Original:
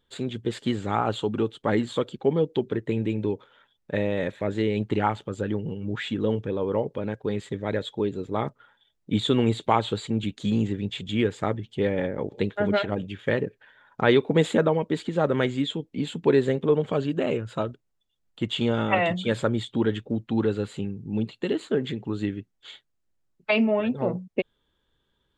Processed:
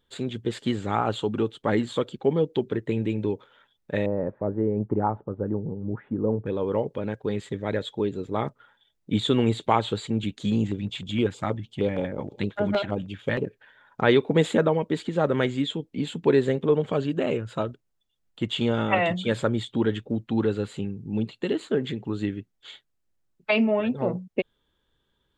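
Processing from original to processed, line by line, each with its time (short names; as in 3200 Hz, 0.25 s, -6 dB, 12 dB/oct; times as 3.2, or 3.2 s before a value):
4.06–6.46 LPF 1100 Hz 24 dB/oct
10.56–13.46 LFO notch square 6.4 Hz 430–1800 Hz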